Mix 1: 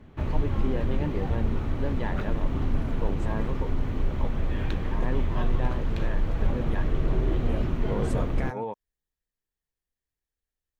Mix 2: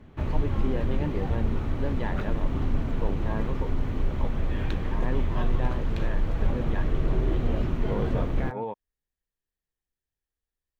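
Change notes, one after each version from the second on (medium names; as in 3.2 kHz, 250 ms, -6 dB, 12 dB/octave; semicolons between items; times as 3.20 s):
second voice: add distance through air 250 m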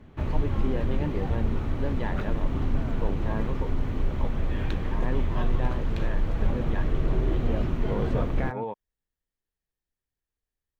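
second voice +3.5 dB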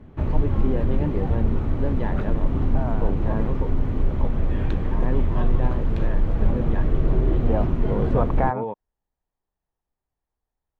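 second voice: add peaking EQ 870 Hz +13.5 dB 1.2 oct; master: add tilt shelf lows +5 dB, about 1.5 kHz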